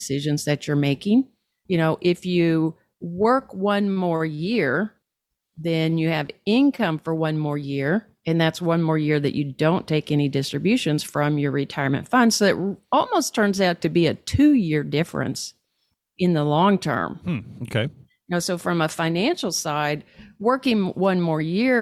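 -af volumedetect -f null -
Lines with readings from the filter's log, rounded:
mean_volume: -21.9 dB
max_volume: -6.0 dB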